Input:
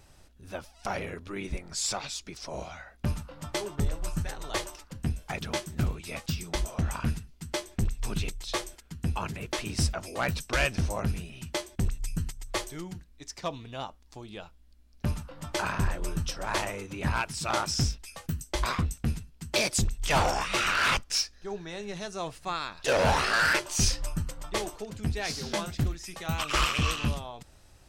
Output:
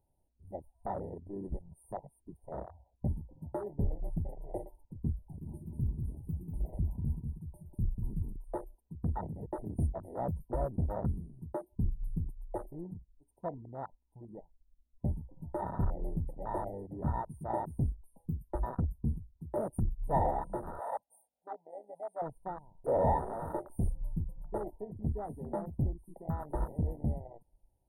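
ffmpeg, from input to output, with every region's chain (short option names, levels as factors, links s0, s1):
-filter_complex "[0:a]asettb=1/sr,asplit=3[s0][s1][s2];[s0]atrim=end=5.264[s3];[s1]atrim=start=5.26:end=8.36,asetpts=PTS-STARTPTS,afade=t=in:d=0.004:c=qsin,afade=t=out:st=3.096:d=0.004:c=qsin,acrossover=split=180|3000[s4][s5][s6];[s5]acompressor=threshold=0.01:ratio=10:attack=3.2:release=140:knee=2.83:detection=peak[s7];[s4][s7][s6]amix=inputs=3:normalize=0,acrusher=bits=9:mode=log:mix=0:aa=0.000001,aecho=1:1:192|384|576:0.562|0.129|0.0297,atrim=end_sample=136710[s8];[s2]atrim=start=8.356[s9];[s3][s8]acrossfade=d=0.004:c1=hsin:c2=qsin[s10];[s10][s9]acrossfade=d=0.004:c1=qsin:c2=hsin,asettb=1/sr,asplit=3[s11][s12][s13];[s11]atrim=end=20.804[s14];[s12]atrim=start=20.8:end=22.22,asetpts=PTS-STARTPTS,afade=t=in:d=0.004:c=qsin,afade=t=out:st=1.416:d=0.004:c=qsin,acrossover=split=7900[s15][s16];[s16]acompressor=threshold=0.00631:ratio=4:attack=1:release=60[s17];[s15][s17]amix=inputs=2:normalize=0,highpass=380,aecho=1:1:1.4:0.93,atrim=end_sample=62622[s18];[s13]atrim=start=22.216[s19];[s14][s18]acrossfade=d=0.004:c1=hsin:c2=qsin[s20];[s20][s19]acrossfade=d=0.004:c1=qsin:c2=hsin,afftfilt=real='re*(1-between(b*sr/4096,1000,8600))':imag='im*(1-between(b*sr/4096,1000,8600))':win_size=4096:overlap=0.75,afwtdn=0.02,equalizer=f=1300:w=3.2:g=8.5,volume=0.668"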